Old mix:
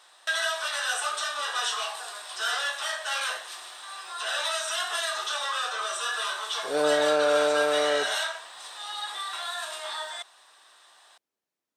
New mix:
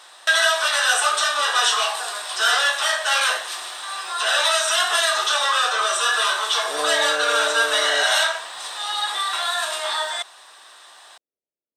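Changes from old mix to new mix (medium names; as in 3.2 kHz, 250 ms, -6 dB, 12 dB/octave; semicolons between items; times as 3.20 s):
speech: add four-pole ladder low-pass 680 Hz, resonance 40%; background +10.0 dB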